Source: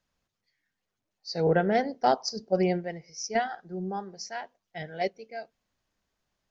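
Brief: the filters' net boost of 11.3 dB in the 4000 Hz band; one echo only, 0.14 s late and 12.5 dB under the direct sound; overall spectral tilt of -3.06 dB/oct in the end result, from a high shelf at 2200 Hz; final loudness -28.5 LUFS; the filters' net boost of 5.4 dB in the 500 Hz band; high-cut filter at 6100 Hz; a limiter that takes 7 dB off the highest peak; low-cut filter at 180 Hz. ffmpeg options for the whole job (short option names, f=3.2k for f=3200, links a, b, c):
-af "highpass=180,lowpass=6.1k,equalizer=f=500:t=o:g=6,highshelf=f=2.2k:g=8.5,equalizer=f=4k:t=o:g=7.5,alimiter=limit=-13dB:level=0:latency=1,aecho=1:1:140:0.237,volume=-2dB"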